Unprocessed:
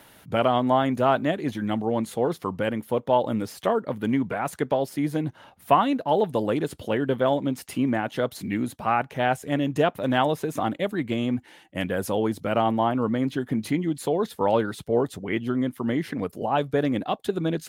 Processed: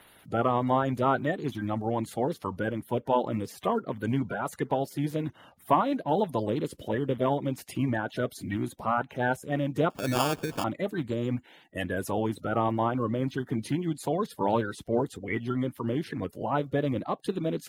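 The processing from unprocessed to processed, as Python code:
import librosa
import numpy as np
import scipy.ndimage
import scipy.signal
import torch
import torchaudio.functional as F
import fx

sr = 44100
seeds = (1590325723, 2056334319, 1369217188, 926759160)

y = fx.spec_quant(x, sr, step_db=30)
y = fx.sample_hold(y, sr, seeds[0], rate_hz=2000.0, jitter_pct=0, at=(9.9, 10.64))
y = y * 10.0 ** (-3.5 / 20.0)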